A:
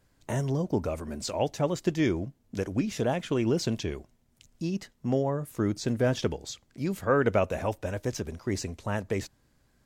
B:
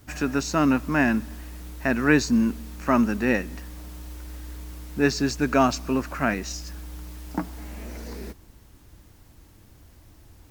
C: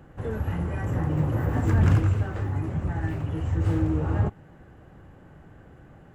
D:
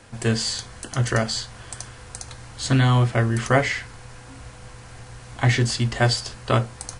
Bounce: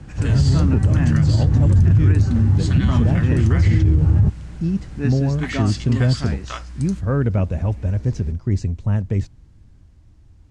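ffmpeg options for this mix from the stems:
-filter_complex "[0:a]lowshelf=f=200:g=11,volume=0.631[s0];[1:a]volume=0.355[s1];[2:a]acrossover=split=330|3000[s2][s3][s4];[s3]acompressor=threshold=0.00631:ratio=2[s5];[s2][s5][s4]amix=inputs=3:normalize=0,volume=1.26[s6];[3:a]highpass=1200,volume=0.596[s7];[s0][s1][s6][s7]amix=inputs=4:normalize=0,lowpass=f=8700:w=0.5412,lowpass=f=8700:w=1.3066,bass=f=250:g=12,treble=f=4000:g=-2,alimiter=limit=0.422:level=0:latency=1:release=61"

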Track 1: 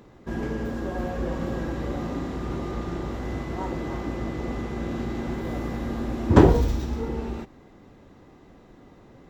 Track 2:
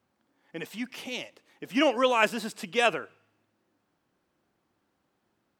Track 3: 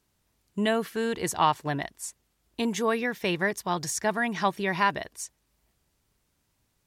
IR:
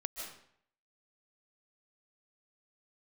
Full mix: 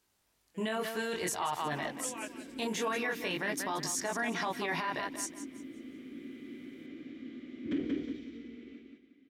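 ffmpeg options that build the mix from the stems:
-filter_complex "[0:a]asplit=3[s0][s1][s2];[s0]bandpass=f=270:t=q:w=8,volume=1[s3];[s1]bandpass=f=2290:t=q:w=8,volume=0.501[s4];[s2]bandpass=f=3010:t=q:w=8,volume=0.355[s5];[s3][s4][s5]amix=inputs=3:normalize=0,adelay=1350,volume=0.841,asplit=2[s6][s7];[s7]volume=0.708[s8];[1:a]volume=0.15,asplit=2[s9][s10];[s10]volume=0.188[s11];[2:a]volume=1.41,asplit=2[s12][s13];[s13]volume=0.15[s14];[s9][s12]amix=inputs=2:normalize=0,flanger=delay=19.5:depth=4:speed=0.53,alimiter=limit=0.0944:level=0:latency=1:release=16,volume=1[s15];[s8][s11][s14]amix=inputs=3:normalize=0,aecho=0:1:181|362|543|724:1|0.31|0.0961|0.0298[s16];[s6][s15][s16]amix=inputs=3:normalize=0,lowshelf=f=260:g=-11,alimiter=level_in=1.12:limit=0.0631:level=0:latency=1:release=11,volume=0.891"

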